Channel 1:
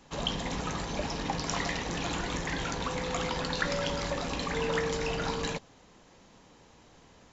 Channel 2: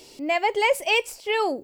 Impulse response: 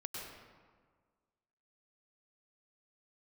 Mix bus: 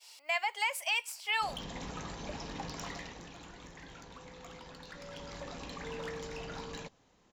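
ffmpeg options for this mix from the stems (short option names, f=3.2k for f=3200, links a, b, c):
-filter_complex "[0:a]volume=24dB,asoftclip=hard,volume=-24dB,adelay=1300,volume=-1dB,afade=t=out:st=2.7:d=0.64:silence=0.334965,afade=t=in:st=4.98:d=0.52:silence=0.446684[a];[1:a]highpass=f=880:w=0.5412,highpass=f=880:w=1.3066,agate=range=-33dB:threshold=-46dB:ratio=3:detection=peak,volume=-0.5dB[b];[a][b]amix=inputs=2:normalize=0,alimiter=limit=-22dB:level=0:latency=1:release=336"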